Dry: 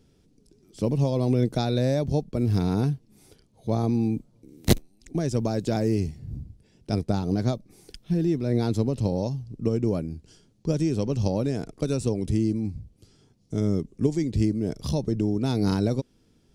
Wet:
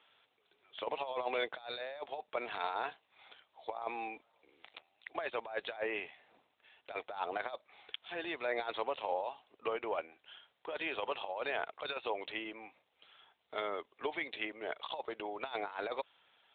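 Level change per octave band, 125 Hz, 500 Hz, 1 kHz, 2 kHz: under -40 dB, -10.5 dB, -1.0 dB, +4.0 dB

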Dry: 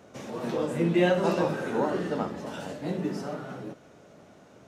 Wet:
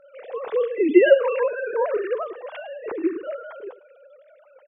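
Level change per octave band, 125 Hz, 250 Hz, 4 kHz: under -30 dB, +3.5 dB, 0.0 dB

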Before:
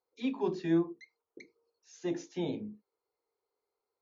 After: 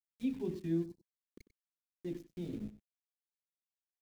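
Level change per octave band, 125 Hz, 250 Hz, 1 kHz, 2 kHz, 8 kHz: -1.0 dB, -5.0 dB, under -15 dB, -12.5 dB, no reading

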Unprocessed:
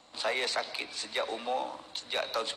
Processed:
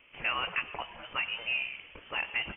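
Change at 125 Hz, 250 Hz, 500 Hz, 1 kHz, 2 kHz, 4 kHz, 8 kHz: no reading, -5.0 dB, -12.5 dB, -3.5 dB, +4.5 dB, -2.5 dB, under -40 dB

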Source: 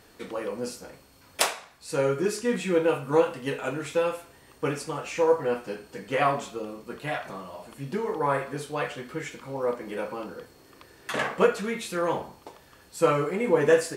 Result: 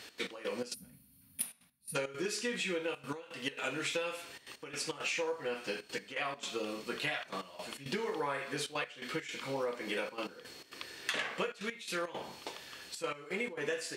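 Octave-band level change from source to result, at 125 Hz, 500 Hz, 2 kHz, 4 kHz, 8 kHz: -14.0 dB, -13.0 dB, -4.5 dB, -1.5 dB, -5.0 dB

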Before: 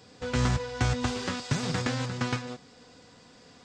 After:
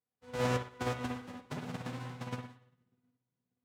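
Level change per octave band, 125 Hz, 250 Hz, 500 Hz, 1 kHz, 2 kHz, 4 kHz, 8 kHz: -10.5 dB, -8.5 dB, -4.0 dB, -5.5 dB, -9.0 dB, -12.0 dB, -13.0 dB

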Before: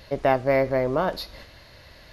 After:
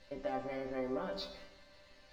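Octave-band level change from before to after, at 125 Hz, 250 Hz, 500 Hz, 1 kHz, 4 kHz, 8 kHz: -21.5 dB, -12.5 dB, -16.5 dB, -16.5 dB, -10.0 dB, no reading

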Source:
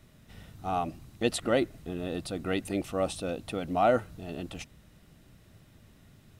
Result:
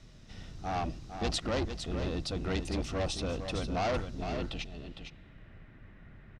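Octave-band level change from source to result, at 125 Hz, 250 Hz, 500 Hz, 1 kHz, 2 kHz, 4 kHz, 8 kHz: +3.0 dB, -3.5 dB, -6.0 dB, -5.0 dB, -2.5 dB, +2.0 dB, -2.0 dB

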